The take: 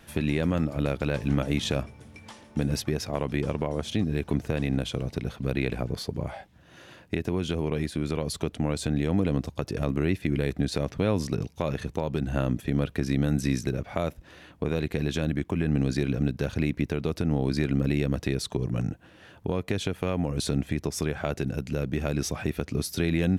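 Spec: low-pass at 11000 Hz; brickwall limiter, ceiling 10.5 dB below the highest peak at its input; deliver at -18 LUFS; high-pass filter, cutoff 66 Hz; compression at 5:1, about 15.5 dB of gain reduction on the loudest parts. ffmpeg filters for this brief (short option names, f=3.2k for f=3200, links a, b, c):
-af "highpass=66,lowpass=11k,acompressor=threshold=-39dB:ratio=5,volume=27.5dB,alimiter=limit=-6dB:level=0:latency=1"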